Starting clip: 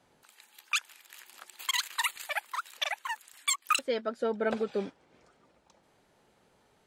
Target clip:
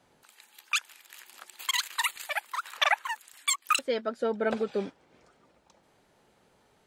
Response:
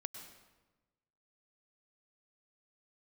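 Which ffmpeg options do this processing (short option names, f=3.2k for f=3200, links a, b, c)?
-filter_complex "[0:a]asettb=1/sr,asplit=3[a][b][c];[a]atrim=end=2.634[d];[b]atrim=start=2.63:end=3.05,asetpts=PTS-STARTPTS,afade=t=in:d=0.004:c=qsin,afade=t=out:st=0.416:d=0.004:c=qsin,equalizer=f=1.2k:w=0.8:g=13.5[e];[c]atrim=start=3.046[f];[d][e]acrossfade=d=0.004:c1=hsin:c2=qsin[g];[g][f]acrossfade=d=0.004:c1=qsin:c2=hsin,volume=1.5dB"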